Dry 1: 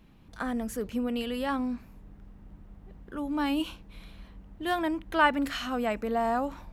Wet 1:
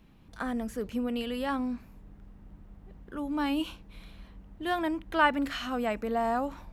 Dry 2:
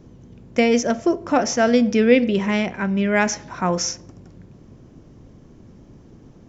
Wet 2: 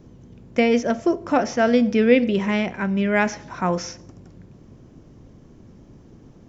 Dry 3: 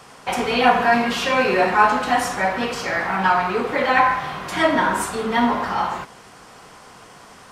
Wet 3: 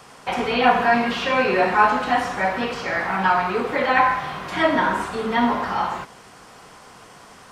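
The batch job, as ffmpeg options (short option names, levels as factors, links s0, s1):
-filter_complex "[0:a]acrossover=split=4600[s0][s1];[s1]acompressor=threshold=0.00501:ratio=4:attack=1:release=60[s2];[s0][s2]amix=inputs=2:normalize=0,volume=0.891"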